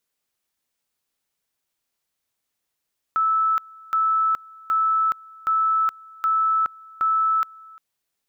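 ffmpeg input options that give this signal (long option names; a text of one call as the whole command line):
ffmpeg -f lavfi -i "aevalsrc='pow(10,(-17-24.5*gte(mod(t,0.77),0.42))/20)*sin(2*PI*1310*t)':duration=4.62:sample_rate=44100" out.wav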